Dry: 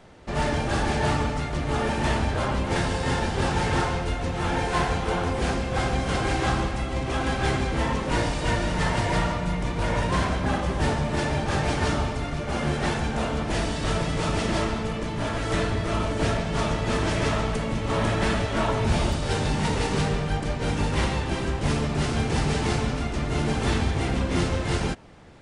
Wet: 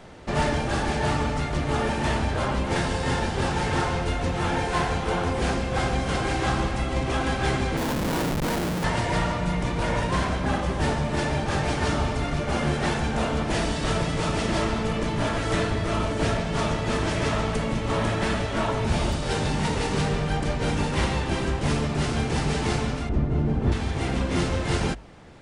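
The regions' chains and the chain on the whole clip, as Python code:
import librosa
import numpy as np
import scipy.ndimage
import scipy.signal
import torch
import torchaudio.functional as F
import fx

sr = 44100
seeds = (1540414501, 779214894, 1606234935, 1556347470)

y = fx.chain(x, sr, fx.cheby1_bandpass(low_hz=160.0, high_hz=1700.0, order=4),
    fx.schmitt(flips_db=-29.0), at=(7.77, 8.84))
y = fx.chain(y, sr, fx.lowpass(hz=1200.0, slope=6),
    fx.low_shelf(hz=440.0, db=11.0), at=(23.09, 23.72))
y = fx.hum_notches(y, sr, base_hz=50, count=2)
y = fx.rider(y, sr, range_db=10, speed_s=0.5)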